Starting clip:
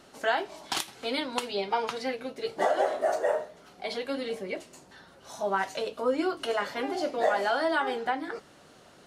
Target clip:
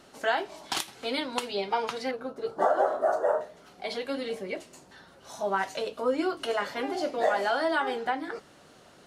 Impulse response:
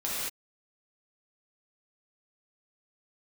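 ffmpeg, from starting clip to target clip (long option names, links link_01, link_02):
-filter_complex "[0:a]asettb=1/sr,asplit=3[link_01][link_02][link_03];[link_01]atrim=end=2.114[link_04];[link_02]atrim=start=2.11:end=3.41,asetpts=PTS-STARTPTS,afade=type=in:duration=0.004:curve=qsin,afade=type=out:start_time=1.296:duration=0.004:curve=qsin,highshelf=frequency=1700:width_type=q:width=3:gain=-8[link_05];[link_03]atrim=start=3.406[link_06];[link_04][link_05]acrossfade=duration=0.004:curve1=hsin:curve2=qsin[link_07];[link_07][link_06]acrossfade=duration=0.004:curve1=qsin:curve2=hsin"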